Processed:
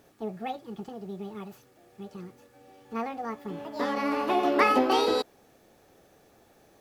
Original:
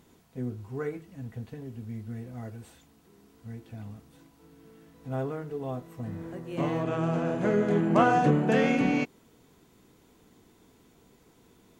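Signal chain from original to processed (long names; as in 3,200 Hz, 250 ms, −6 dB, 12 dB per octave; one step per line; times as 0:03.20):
wrong playback speed 45 rpm record played at 78 rpm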